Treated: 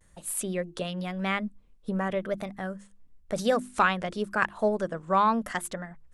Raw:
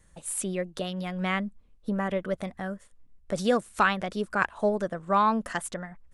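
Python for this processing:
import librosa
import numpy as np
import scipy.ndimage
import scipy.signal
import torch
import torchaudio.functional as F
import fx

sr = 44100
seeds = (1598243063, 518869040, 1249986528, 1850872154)

y = fx.vibrato(x, sr, rate_hz=0.95, depth_cents=70.0)
y = fx.hum_notches(y, sr, base_hz=50, count=7)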